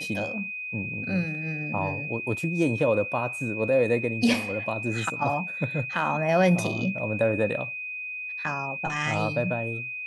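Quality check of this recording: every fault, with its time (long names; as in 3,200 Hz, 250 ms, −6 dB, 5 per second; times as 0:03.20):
whistle 2,500 Hz −32 dBFS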